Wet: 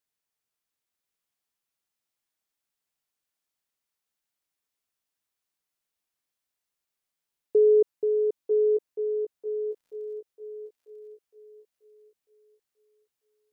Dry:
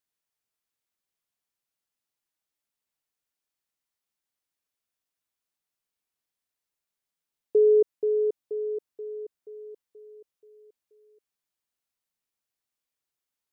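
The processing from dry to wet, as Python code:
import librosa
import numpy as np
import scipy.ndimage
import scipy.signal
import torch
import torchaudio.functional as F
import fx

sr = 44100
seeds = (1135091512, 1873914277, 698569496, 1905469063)

y = fx.dmg_crackle(x, sr, seeds[0], per_s=110.0, level_db=-59.0, at=(9.69, 10.17), fade=0.02)
y = fx.echo_thinned(y, sr, ms=944, feedback_pct=37, hz=450.0, wet_db=-4.5)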